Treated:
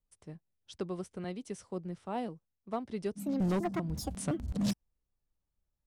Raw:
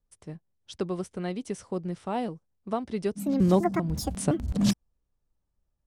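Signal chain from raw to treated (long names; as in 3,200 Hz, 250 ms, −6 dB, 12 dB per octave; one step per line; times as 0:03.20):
hard clipping −19.5 dBFS, distortion −14 dB
0:01.24–0:02.89: multiband upward and downward expander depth 40%
level −6.5 dB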